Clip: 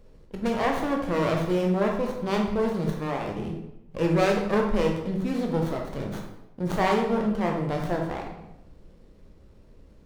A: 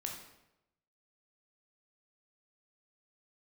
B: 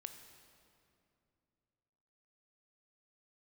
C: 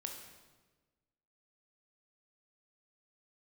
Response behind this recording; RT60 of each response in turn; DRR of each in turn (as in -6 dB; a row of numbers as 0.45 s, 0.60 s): A; 0.90 s, 2.6 s, 1.3 s; 0.5 dB, 7.0 dB, 2.5 dB